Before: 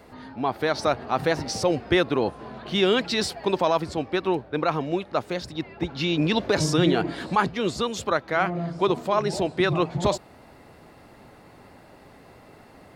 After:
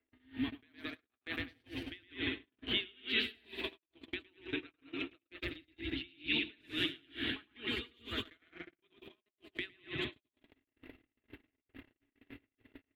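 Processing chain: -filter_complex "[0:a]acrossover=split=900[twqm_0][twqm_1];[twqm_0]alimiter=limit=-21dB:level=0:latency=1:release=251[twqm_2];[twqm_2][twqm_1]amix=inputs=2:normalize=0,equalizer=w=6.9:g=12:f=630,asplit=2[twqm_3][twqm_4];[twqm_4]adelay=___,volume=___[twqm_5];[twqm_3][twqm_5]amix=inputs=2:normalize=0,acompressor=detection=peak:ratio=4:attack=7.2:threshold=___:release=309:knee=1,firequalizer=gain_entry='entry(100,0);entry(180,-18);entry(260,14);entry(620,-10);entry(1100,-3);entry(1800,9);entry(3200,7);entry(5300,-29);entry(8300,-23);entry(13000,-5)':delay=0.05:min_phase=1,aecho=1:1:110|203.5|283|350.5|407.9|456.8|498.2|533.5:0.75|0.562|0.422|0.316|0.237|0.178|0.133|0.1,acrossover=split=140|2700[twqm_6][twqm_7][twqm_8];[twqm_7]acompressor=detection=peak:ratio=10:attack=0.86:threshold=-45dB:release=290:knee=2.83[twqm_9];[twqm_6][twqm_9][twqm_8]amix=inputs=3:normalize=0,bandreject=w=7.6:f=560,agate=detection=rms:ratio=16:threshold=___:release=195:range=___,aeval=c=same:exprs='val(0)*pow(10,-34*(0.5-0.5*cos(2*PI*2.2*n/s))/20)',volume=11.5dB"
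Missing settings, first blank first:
18, -13.5dB, -40dB, -44dB, -47dB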